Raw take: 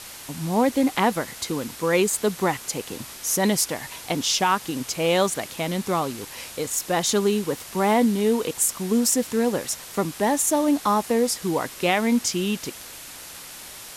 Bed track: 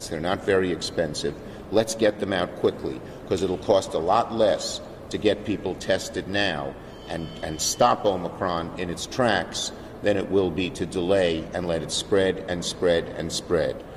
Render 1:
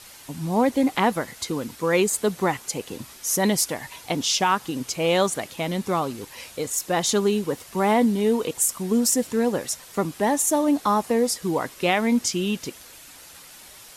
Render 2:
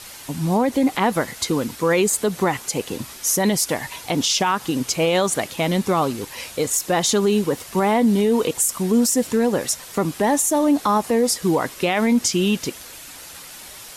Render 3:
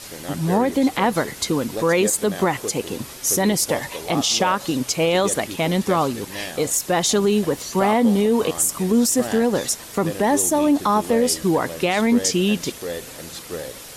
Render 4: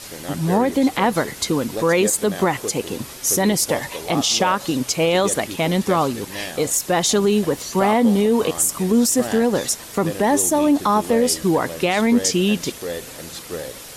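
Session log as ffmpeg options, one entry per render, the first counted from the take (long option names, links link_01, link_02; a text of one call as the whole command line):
ffmpeg -i in.wav -af "afftdn=noise_reduction=7:noise_floor=-40" out.wav
ffmpeg -i in.wav -af "alimiter=limit=-16dB:level=0:latency=1:release=77,acontrast=63" out.wav
ffmpeg -i in.wav -i bed.wav -filter_complex "[1:a]volume=-8.5dB[link_01];[0:a][link_01]amix=inputs=2:normalize=0" out.wav
ffmpeg -i in.wav -af "volume=1dB" out.wav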